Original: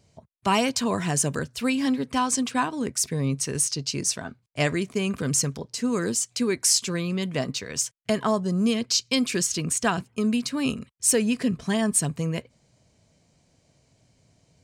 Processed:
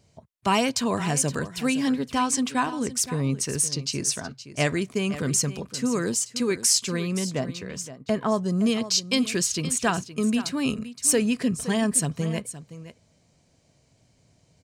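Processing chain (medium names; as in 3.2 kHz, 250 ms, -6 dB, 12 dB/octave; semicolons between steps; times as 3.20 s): 7.19–8.32 s: treble shelf 2.1 kHz -9.5 dB; on a send: delay 518 ms -14 dB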